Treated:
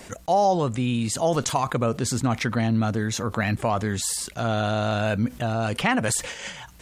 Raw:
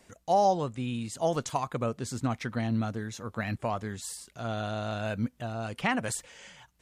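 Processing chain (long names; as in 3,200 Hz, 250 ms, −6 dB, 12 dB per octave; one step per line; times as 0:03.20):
noise gate −48 dBFS, range −12 dB
envelope flattener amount 50%
level +3 dB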